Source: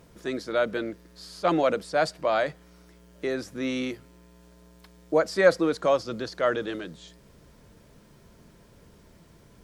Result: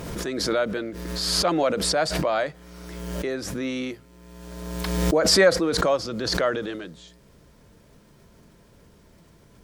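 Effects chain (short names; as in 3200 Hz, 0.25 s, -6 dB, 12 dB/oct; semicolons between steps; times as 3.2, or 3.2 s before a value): backwards sustainer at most 32 dB/s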